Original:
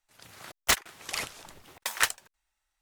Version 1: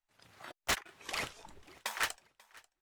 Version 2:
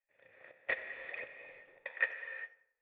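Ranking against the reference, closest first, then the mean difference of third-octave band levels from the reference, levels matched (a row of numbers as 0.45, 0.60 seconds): 1, 2; 3.5, 13.5 decibels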